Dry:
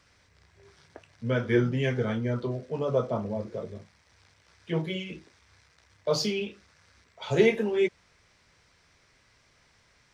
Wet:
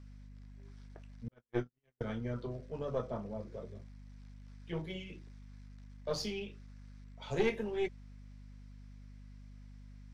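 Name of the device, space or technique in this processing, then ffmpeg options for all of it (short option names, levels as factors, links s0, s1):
valve amplifier with mains hum: -filter_complex "[0:a]aeval=exprs='(tanh(5.01*val(0)+0.65)-tanh(0.65))/5.01':c=same,aeval=exprs='val(0)+0.00631*(sin(2*PI*50*n/s)+sin(2*PI*2*50*n/s)/2+sin(2*PI*3*50*n/s)/3+sin(2*PI*4*50*n/s)/4+sin(2*PI*5*50*n/s)/5)':c=same,asettb=1/sr,asplit=3[s0][s1][s2];[s0]atrim=end=1.284[s3];[s1]atrim=start=1.28:end=2.01,asetpts=PTS-STARTPTS,afade=t=in:d=0.004:c=qsin,afade=t=out:st=0.726:d=0.004:c=qsin,agate=range=0.00178:threshold=0.0708:ratio=16:detection=peak[s4];[s2]atrim=start=2.006[s5];[s3][s4]acrossfade=d=0.004:c1=hsin:c2=qsin[s6];[s6][s5]acrossfade=d=0.004:c1=qsin:c2=hsin,volume=0.473"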